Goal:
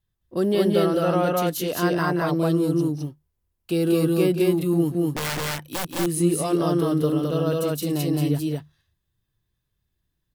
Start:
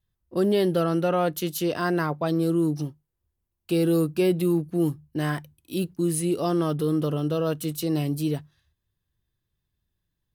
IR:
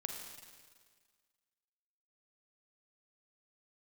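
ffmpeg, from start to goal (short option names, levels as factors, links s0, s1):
-filter_complex "[0:a]asettb=1/sr,asplit=3[s0][s1][s2];[s0]atrim=end=5.064[s3];[s1]atrim=start=5.06:end=5.89,asetpts=PTS-STARTPTS,afade=t=in:d=0.004:c=qsin,afade=t=out:st=0.826:d=0.004:c=qsin,aeval=exprs='(mod(13.3*val(0)+1,2)-1)/13.3':c=same[s4];[s2]atrim=start=5.886[s5];[s3][s4]acrossfade=d=0.004:c1=hsin:c2=qsin[s6];[s6][s5]acrossfade=d=0.004:c1=qsin:c2=hsin,aecho=1:1:177.8|212.8:0.316|0.891"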